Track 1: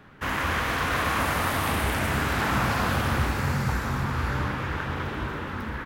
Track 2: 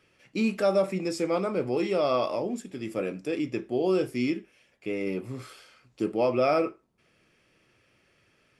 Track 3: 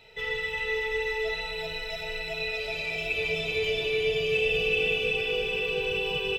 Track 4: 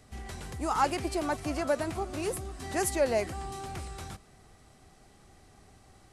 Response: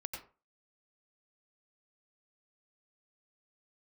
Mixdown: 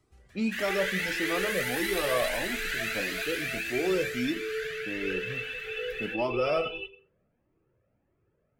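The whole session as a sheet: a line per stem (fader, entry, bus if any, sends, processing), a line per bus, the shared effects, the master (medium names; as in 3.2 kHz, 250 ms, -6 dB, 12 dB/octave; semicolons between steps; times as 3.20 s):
-0.5 dB, 0.30 s, send -4 dB, steep high-pass 1.6 kHz 48 dB/octave; band-stop 5.3 kHz, Q 13
-0.5 dB, 0.00 s, send -11 dB, level-controlled noise filter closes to 700 Hz, open at -22.5 dBFS
-2.0 dB, 0.50 s, send -9.5 dB, spectral contrast enhancement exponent 1.6; compression, threshold -28 dBFS, peak gain reduction 6.5 dB
-10.0 dB, 0.00 s, no send, auto duck -11 dB, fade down 0.50 s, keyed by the second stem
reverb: on, RT60 0.35 s, pre-delay 85 ms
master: Shepard-style flanger rising 1.6 Hz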